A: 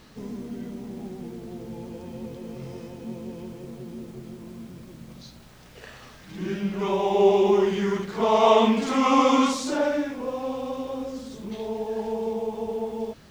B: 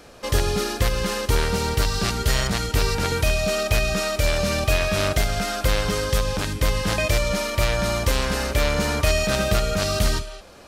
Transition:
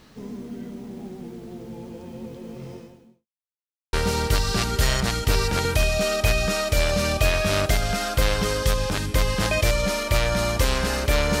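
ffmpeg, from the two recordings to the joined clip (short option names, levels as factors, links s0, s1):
-filter_complex "[0:a]apad=whole_dur=11.4,atrim=end=11.4,asplit=2[s0][s1];[s0]atrim=end=3.27,asetpts=PTS-STARTPTS,afade=t=out:st=2.73:d=0.54:c=qua[s2];[s1]atrim=start=3.27:end=3.93,asetpts=PTS-STARTPTS,volume=0[s3];[1:a]atrim=start=1.4:end=8.87,asetpts=PTS-STARTPTS,afade=t=in:d=0.004:c=hsin[s4];[s2][s3][s4]concat=n=3:v=0:a=1"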